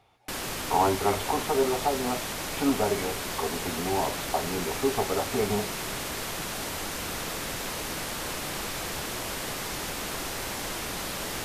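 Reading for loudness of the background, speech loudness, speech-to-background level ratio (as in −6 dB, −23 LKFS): −32.0 LKFS, −29.0 LKFS, 3.0 dB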